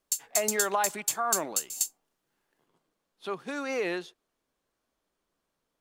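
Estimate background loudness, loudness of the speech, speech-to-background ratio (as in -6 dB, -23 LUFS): -29.5 LUFS, -32.0 LUFS, -2.5 dB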